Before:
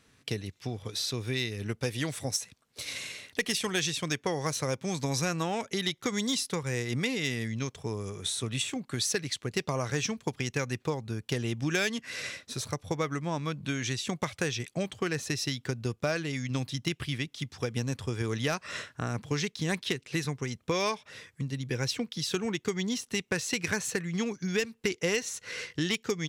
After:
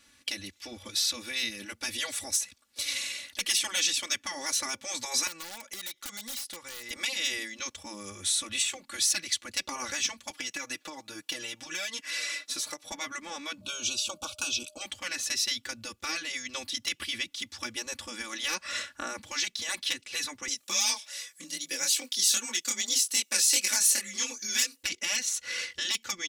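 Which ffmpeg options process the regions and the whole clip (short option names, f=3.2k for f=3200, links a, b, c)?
-filter_complex "[0:a]asettb=1/sr,asplit=3[a][b][c];[a]atrim=end=5.274[d];[b]atrim=start=5.27:end=6.91,asetpts=PTS-STARTPTS,afade=t=in:d=0.004:c=qsin,afade=t=out:st=1.636:d=0.004:c=qsin,equalizer=f=110:t=o:w=2.9:g=-9.5,aeval=exprs='(mod(17.8*val(0)+1,2)-1)/17.8':c=same,acompressor=threshold=-42dB:ratio=4:attack=3.2:release=140:knee=1:detection=peak[e];[c]atrim=start=6.906[f];[d][e]acrossfade=d=0.004:c1=hsin:c2=qsin[g];[g][f]acrossfade=d=0.004:c1=qsin:c2=hsin,asettb=1/sr,asplit=3[h][i][j];[h]atrim=end=10.304[k];[i]atrim=start=10.3:end=12.92,asetpts=PTS-STARTPTS,afade=t=in:d=0.004:c=qsin,afade=t=out:st=2.616:d=0.004:c=qsin,highpass=280,aecho=1:1:6.5:0.76,atrim=end_sample=115542,acompressor=threshold=-33dB:ratio=6:attack=3.2:release=140:knee=1:detection=peak[l];[j]atrim=start=12.916[m];[k][l]acrossfade=d=0.004:c1=hsin:c2=qsin[n];[n][m]acrossfade=d=0.004:c1=qsin:c2=hsin,asettb=1/sr,asplit=3[o][p][q];[o]atrim=end=13.614[r];[p]atrim=start=13.61:end=14.82,asetpts=PTS-STARTPTS,afade=t=in:d=0.004:c=qsin,afade=t=out:st=1.206:d=0.004:c=qsin,asuperstop=centerf=1900:order=8:qfactor=2,aeval=exprs='val(0)+0.00141*sin(2*PI*610*n/s)':c=same[s];[q]atrim=start=14.816[t];[r][s]acrossfade=d=0.004:c1=hsin:c2=qsin[u];[u][t]acrossfade=d=0.004:c1=qsin:c2=hsin,asettb=1/sr,asplit=3[v][w][x];[v]atrim=end=20.484[y];[w]atrim=start=20.48:end=24.83,asetpts=PTS-STARTPTS,afade=t=in:d=0.004:c=qsin,afade=t=out:st=4.346:d=0.004:c=qsin,bass=f=250:g=-13,treble=f=4k:g=14,afreqshift=31,flanger=delay=20:depth=5.9:speed=2.5[z];[x]atrim=start=24.826[aa];[y][z]acrossfade=d=0.004:c1=hsin:c2=qsin[ab];[ab][aa]acrossfade=d=0.004:c1=qsin:c2=hsin,afftfilt=real='re*lt(hypot(re,im),0.112)':imag='im*lt(hypot(re,im),0.112)':win_size=1024:overlap=0.75,tiltshelf=f=1.5k:g=-5.5,aecho=1:1:3.5:0.98,volume=-1dB"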